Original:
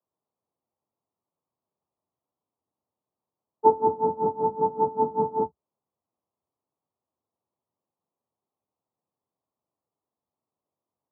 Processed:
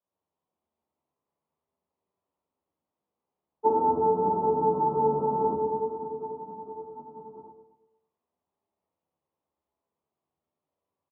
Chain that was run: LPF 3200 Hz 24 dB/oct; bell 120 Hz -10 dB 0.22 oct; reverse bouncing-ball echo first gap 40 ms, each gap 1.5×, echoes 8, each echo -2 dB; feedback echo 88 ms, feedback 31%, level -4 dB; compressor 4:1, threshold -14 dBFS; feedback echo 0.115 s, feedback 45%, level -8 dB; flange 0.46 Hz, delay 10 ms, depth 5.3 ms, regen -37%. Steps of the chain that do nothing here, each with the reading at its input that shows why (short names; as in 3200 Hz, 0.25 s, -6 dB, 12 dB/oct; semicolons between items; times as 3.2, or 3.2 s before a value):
LPF 3200 Hz: input band ends at 910 Hz